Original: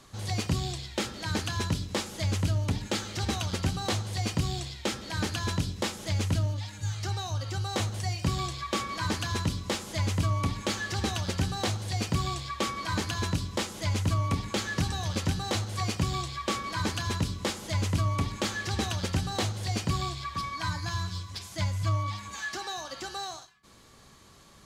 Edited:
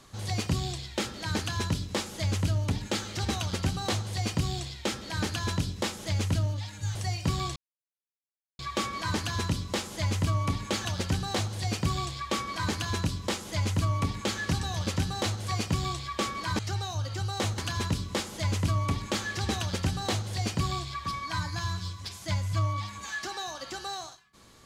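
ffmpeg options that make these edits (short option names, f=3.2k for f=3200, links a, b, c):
-filter_complex "[0:a]asplit=6[a][b][c][d][e][f];[a]atrim=end=6.952[g];[b]atrim=start=7.938:end=8.55,asetpts=PTS-STARTPTS,afade=t=out:st=0.608:d=0.004:c=hsin,apad=pad_dur=1.03[h];[c]atrim=start=8.55:end=10.812,asetpts=PTS-STARTPTS,afade=t=in:d=0.004:c=hsin[i];[d]atrim=start=11.138:end=16.882[j];[e]atrim=start=6.948:end=7.942[k];[f]atrim=start=16.878[l];[h][i]concat=n=2:v=0:a=1[m];[g][m]acrossfade=d=0.004:c1=hsin:c2=hsin[n];[n][j]acrossfade=d=0.004:c1=hsin:c2=hsin[o];[o][k]acrossfade=d=0.004:c1=hsin:c2=hsin[p];[p][l]acrossfade=d=0.004:c1=hsin:c2=hsin"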